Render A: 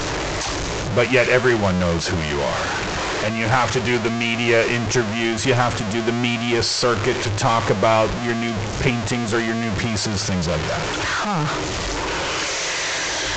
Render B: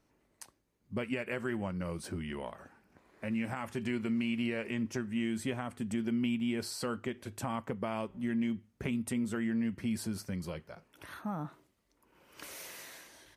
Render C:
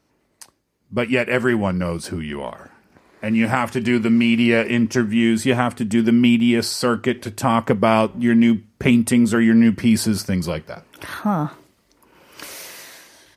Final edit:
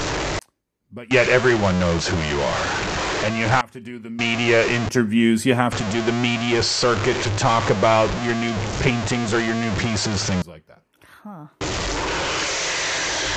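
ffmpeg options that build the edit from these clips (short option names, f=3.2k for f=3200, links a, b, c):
-filter_complex "[1:a]asplit=3[a][b][c];[0:a]asplit=5[d][e][f][g][h];[d]atrim=end=0.392[i];[a]atrim=start=0.388:end=1.112[j];[e]atrim=start=1.108:end=3.612[k];[b]atrim=start=3.608:end=4.192[l];[f]atrim=start=4.188:end=4.892[m];[2:a]atrim=start=4.888:end=5.722[n];[g]atrim=start=5.718:end=10.422[o];[c]atrim=start=10.418:end=11.612[p];[h]atrim=start=11.608[q];[i][j]acrossfade=d=0.004:c1=hsin:c2=hsin[r];[r][k]acrossfade=d=0.004:c1=hsin:c2=hsin[s];[s][l]acrossfade=d=0.004:c1=hsin:c2=hsin[t];[t][m]acrossfade=d=0.004:c1=hsin:c2=hsin[u];[u][n]acrossfade=d=0.004:c1=hsin:c2=hsin[v];[v][o]acrossfade=d=0.004:c1=hsin:c2=hsin[w];[w][p]acrossfade=d=0.004:c1=hsin:c2=hsin[x];[x][q]acrossfade=d=0.004:c1=hsin:c2=hsin"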